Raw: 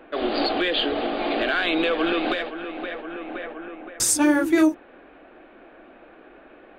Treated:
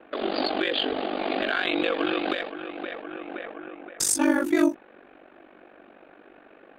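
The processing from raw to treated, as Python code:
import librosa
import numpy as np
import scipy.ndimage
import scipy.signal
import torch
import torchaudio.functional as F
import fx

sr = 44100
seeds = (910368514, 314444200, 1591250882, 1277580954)

y = fx.highpass(x, sr, hz=100.0, slope=6)
y = y * np.sin(2.0 * np.pi * 24.0 * np.arange(len(y)) / sr)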